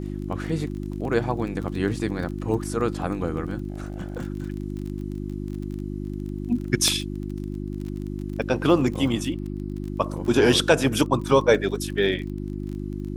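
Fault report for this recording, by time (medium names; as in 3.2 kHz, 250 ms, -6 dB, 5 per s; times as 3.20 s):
crackle 29 per s -32 dBFS
hum 50 Hz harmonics 7 -31 dBFS
3.70–4.22 s: clipped -26.5 dBFS
6.88 s: pop -9 dBFS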